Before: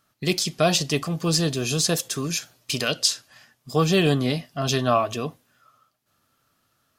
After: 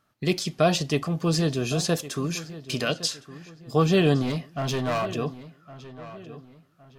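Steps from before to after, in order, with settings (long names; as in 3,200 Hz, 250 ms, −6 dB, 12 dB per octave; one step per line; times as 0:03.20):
high-shelf EQ 3,400 Hz −9.5 dB
0:04.22–0:05.14: hard clipping −23 dBFS, distortion −12 dB
feedback echo with a low-pass in the loop 1,112 ms, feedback 37%, low-pass 3,400 Hz, level −15.5 dB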